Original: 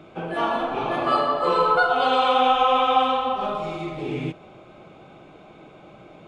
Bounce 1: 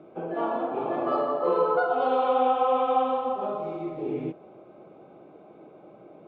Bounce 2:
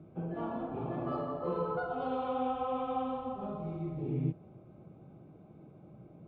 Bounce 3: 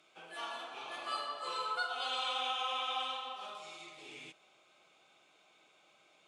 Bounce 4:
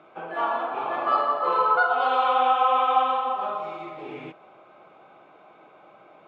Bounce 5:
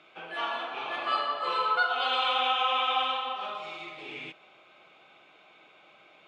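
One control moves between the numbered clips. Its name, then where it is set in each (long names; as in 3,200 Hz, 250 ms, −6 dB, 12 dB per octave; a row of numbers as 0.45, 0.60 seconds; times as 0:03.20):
resonant band-pass, frequency: 420, 120, 7,900, 1,100, 2,800 Hertz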